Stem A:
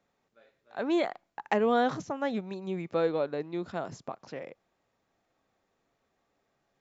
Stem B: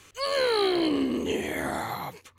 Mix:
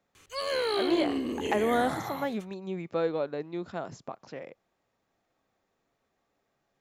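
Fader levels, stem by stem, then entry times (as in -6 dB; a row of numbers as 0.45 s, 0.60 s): -1.0 dB, -4.5 dB; 0.00 s, 0.15 s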